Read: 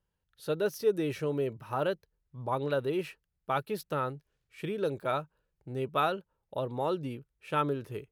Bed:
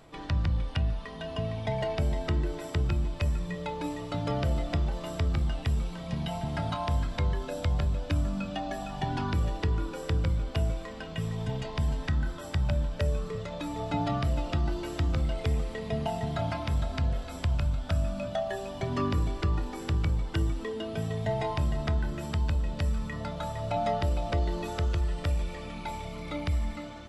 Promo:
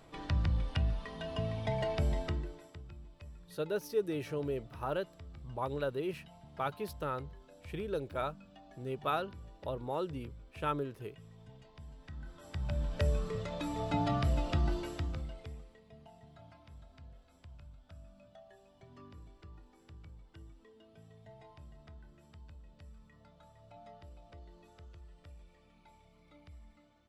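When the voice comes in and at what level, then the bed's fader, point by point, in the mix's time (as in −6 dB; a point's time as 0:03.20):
3.10 s, −5.0 dB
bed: 0:02.19 −3.5 dB
0:02.83 −22.5 dB
0:11.93 −22.5 dB
0:12.99 −2.5 dB
0:14.74 −2.5 dB
0:15.84 −25.5 dB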